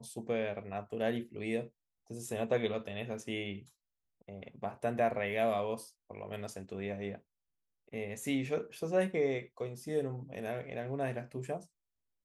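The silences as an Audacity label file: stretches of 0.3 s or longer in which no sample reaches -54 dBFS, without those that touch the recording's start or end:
1.690000	2.080000	silence
3.690000	4.210000	silence
7.200000	7.880000	silence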